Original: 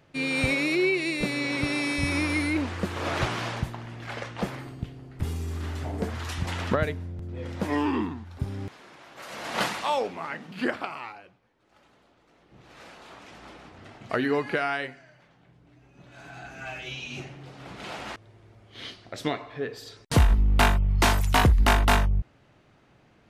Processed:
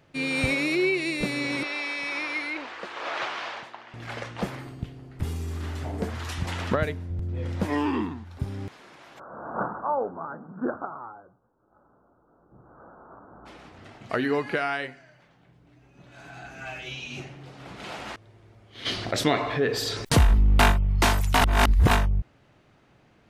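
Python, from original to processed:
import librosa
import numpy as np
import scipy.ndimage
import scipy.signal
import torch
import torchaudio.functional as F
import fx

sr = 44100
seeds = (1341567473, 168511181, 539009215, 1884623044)

y = fx.bandpass_edges(x, sr, low_hz=620.0, high_hz=4500.0, at=(1.63, 3.94))
y = fx.low_shelf(y, sr, hz=100.0, db=11.5, at=(7.1, 7.66))
y = fx.steep_lowpass(y, sr, hz=1500.0, slope=96, at=(9.18, 13.45), fade=0.02)
y = fx.env_flatten(y, sr, amount_pct=50, at=(18.85, 20.71), fade=0.02)
y = fx.edit(y, sr, fx.reverse_span(start_s=21.41, length_s=0.5), tone=tone)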